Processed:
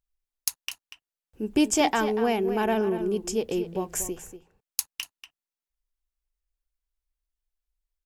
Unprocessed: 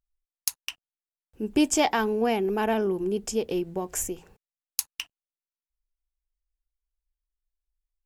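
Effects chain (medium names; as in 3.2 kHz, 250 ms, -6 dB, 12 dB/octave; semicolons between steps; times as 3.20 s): echo from a far wall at 41 m, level -11 dB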